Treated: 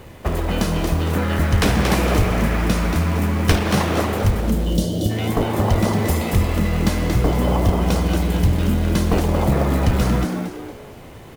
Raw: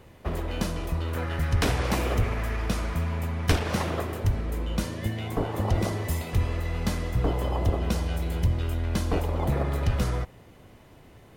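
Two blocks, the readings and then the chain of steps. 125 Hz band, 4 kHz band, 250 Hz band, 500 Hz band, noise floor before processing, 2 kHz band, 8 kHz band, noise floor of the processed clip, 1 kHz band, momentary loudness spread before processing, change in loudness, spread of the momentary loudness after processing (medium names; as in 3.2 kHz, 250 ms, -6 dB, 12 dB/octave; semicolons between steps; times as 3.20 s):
+7.5 dB, +8.5 dB, +12.0 dB, +9.0 dB, -52 dBFS, +8.5 dB, +9.0 dB, -39 dBFS, +9.0 dB, 5 LU, +8.5 dB, 4 LU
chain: spectral selection erased 4.41–5.10 s, 650–2800 Hz; in parallel at +1.5 dB: compression 12:1, threshold -31 dBFS, peak gain reduction 15 dB; on the sum: companded quantiser 6-bit; frequency-shifting echo 230 ms, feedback 35%, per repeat +120 Hz, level -6 dB; trim +4 dB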